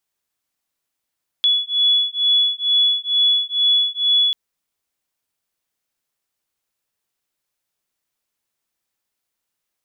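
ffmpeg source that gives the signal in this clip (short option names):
-f lavfi -i "aevalsrc='0.133*(sin(2*PI*3400*t)+sin(2*PI*3402.2*t))':d=2.89:s=44100"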